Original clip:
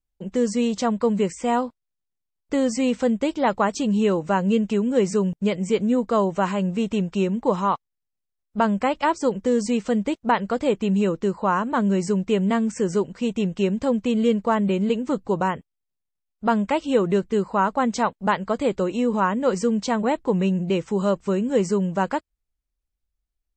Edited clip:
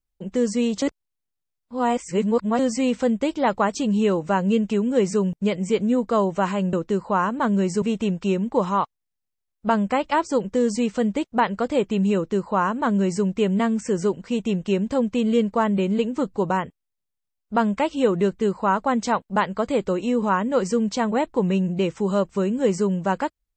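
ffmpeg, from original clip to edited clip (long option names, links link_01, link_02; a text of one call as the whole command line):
ffmpeg -i in.wav -filter_complex "[0:a]asplit=5[link_01][link_02][link_03][link_04][link_05];[link_01]atrim=end=0.822[link_06];[link_02]atrim=start=0.818:end=2.592,asetpts=PTS-STARTPTS,areverse[link_07];[link_03]atrim=start=2.588:end=6.732[link_08];[link_04]atrim=start=11.058:end=12.152[link_09];[link_05]atrim=start=6.728[link_10];[link_06][link_07]acrossfade=duration=0.004:curve1=hsin:curve2=hsin[link_11];[link_11][link_08]acrossfade=duration=0.004:curve1=hsin:curve2=hsin[link_12];[link_12][link_09]acrossfade=duration=0.004:curve1=hsin:curve2=hsin[link_13];[link_13][link_10]acrossfade=duration=0.004:curve1=hsin:curve2=hsin" out.wav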